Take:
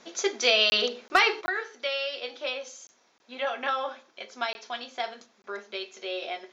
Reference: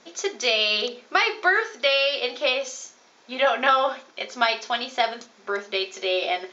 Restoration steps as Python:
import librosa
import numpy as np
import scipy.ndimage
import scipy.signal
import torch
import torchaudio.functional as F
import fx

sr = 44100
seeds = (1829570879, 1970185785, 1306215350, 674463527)

y = fx.fix_declip(x, sr, threshold_db=-9.0)
y = fx.fix_interpolate(y, sr, at_s=(0.7, 1.08, 1.46, 2.87, 3.18, 4.53, 5.42), length_ms=20.0)
y = fx.gain(y, sr, db=fx.steps((0.0, 0.0), (1.41, 9.5)))